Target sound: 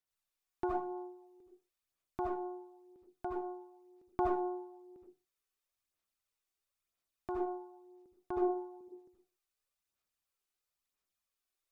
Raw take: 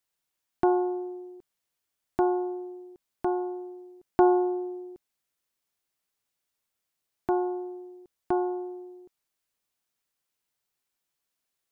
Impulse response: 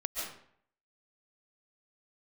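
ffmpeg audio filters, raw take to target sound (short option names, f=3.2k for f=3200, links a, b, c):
-filter_complex "[0:a]asettb=1/sr,asplit=3[a][b][c];[a]atrim=end=8.374[d];[b]atrim=start=8.37:end=8.81,asetpts=PTS-STARTPTS,afade=t=in:d=0.004:c=qsin,afade=t=out:st=0.436:d=0.004:c=qsin,lowshelf=f=410:g=9.5[e];[c]atrim=start=8.806[f];[d][e]acrossfade=d=0.004:c1=hsin:c2=qsin[g];[g][f]acrossfade=d=0.004:c1=qsin:c2=hsin[h];[1:a]atrim=start_sample=2205,asetrate=83790,aresample=44100[i];[h][i]afir=irnorm=-1:irlink=0,aphaser=in_gain=1:out_gain=1:delay=2.7:decay=0.43:speed=1:type=sinusoidal,volume=-5dB"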